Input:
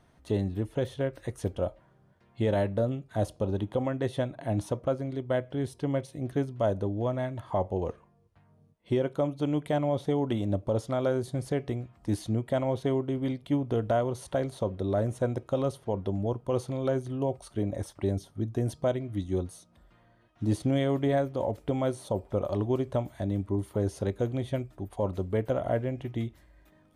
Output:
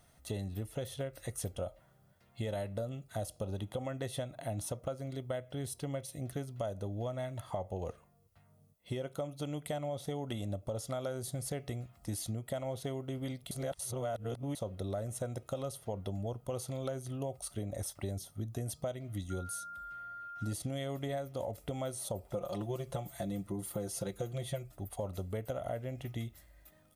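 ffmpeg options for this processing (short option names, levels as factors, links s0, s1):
-filter_complex "[0:a]asettb=1/sr,asplit=3[s0][s1][s2];[s0]atrim=end=19.304[s3];[s1]atrim=start=19.3:end=20.53,asetpts=PTS-STARTPTS,afade=t=in:d=0.004:c=qsin,afade=t=out:st=1.226:d=0.004:c=qsin,aeval=exprs='val(0)+0.00794*sin(2*PI*1400*n/s)':c=same[s4];[s2]atrim=start=20.526[s5];[s3][s4]acrossfade=d=0.004:c1=hsin:c2=qsin[s6];[s6][s5]acrossfade=d=0.004:c1=qsin:c2=hsin,asettb=1/sr,asplit=3[s7][s8][s9];[s7]atrim=end=22.334[s10];[s8]atrim=start=22.33:end=24.72,asetpts=PTS-STARTPTS,afade=t=in:d=0.004:c=qsin,afade=t=out:st=2.386:d=0.004:c=qsin,aecho=1:1:5.8:0.92,atrim=end_sample=105399[s11];[s9]atrim=start=24.716[s12];[s10][s11]acrossfade=d=0.004:c1=hsin:c2=qsin[s13];[s13][s12]acrossfade=d=0.004:c1=qsin:c2=hsin,asplit=3[s14][s15][s16];[s14]atrim=end=13.512[s17];[s15]atrim=start=13.508:end=14.552,asetpts=PTS-STARTPTS,areverse[s18];[s16]atrim=start=14.548[s19];[s17][s18]acrossfade=d=0.004:c1=hsin:c2=hsin[s20];[s20][s19]acrossfade=d=0.004:c1=hsin:c2=hsin,aemphasis=mode=production:type=75fm,aecho=1:1:1.5:0.38,acompressor=threshold=0.0316:ratio=6,volume=0.631"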